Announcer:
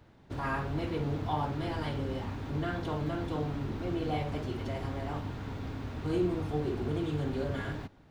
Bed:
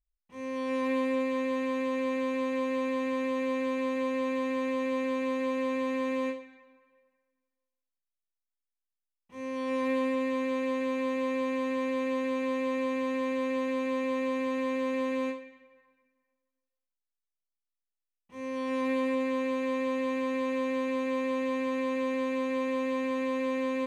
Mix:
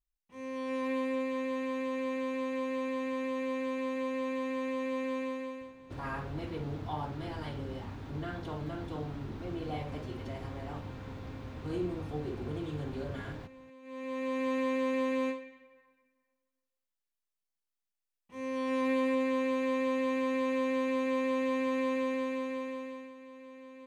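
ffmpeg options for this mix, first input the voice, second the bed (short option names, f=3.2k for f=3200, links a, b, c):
-filter_complex "[0:a]adelay=5600,volume=-5dB[a];[1:a]volume=18.5dB,afade=t=out:st=5.18:d=0.56:silence=0.112202,afade=t=in:st=13.82:d=0.69:silence=0.0749894,afade=t=out:st=21.87:d=1.27:silence=0.112202[b];[a][b]amix=inputs=2:normalize=0"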